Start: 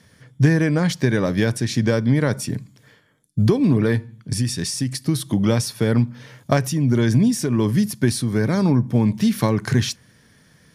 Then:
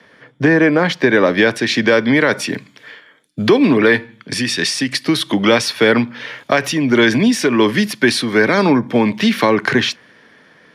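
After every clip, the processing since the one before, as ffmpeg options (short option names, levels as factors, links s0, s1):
-filter_complex "[0:a]acrossover=split=260 3500:gain=0.0708 1 0.0794[s0][s1][s2];[s0][s1][s2]amix=inputs=3:normalize=0,acrossover=split=210|1700[s3][s4][s5];[s5]dynaudnorm=f=230:g=13:m=3.16[s6];[s3][s4][s6]amix=inputs=3:normalize=0,alimiter=level_in=3.98:limit=0.891:release=50:level=0:latency=1,volume=0.891"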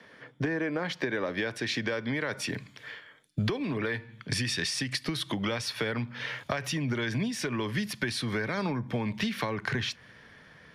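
-af "acompressor=threshold=0.0794:ratio=6,asubboost=boost=7.5:cutoff=100,volume=0.531"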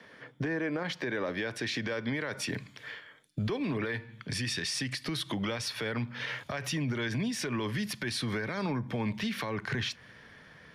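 -af "alimiter=limit=0.0631:level=0:latency=1:release=41"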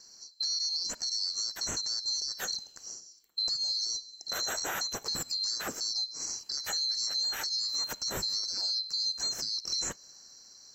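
-af "afftfilt=real='real(if(lt(b,736),b+184*(1-2*mod(floor(b/184),2)),b),0)':imag='imag(if(lt(b,736),b+184*(1-2*mod(floor(b/184),2)),b),0)':win_size=2048:overlap=0.75"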